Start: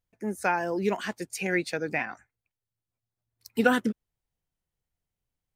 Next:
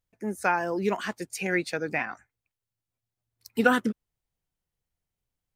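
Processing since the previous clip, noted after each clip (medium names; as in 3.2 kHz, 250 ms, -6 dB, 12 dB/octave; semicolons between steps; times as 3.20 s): dynamic bell 1.2 kHz, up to +5 dB, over -43 dBFS, Q 2.9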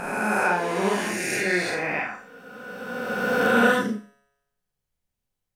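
reverse spectral sustain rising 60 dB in 2.56 s; feedback comb 140 Hz, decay 1 s, harmonics all, mix 40%; Schroeder reverb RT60 0.33 s, combs from 30 ms, DRR 0 dB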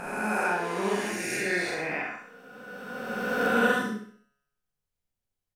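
feedback delay 65 ms, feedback 40%, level -6 dB; trim -5.5 dB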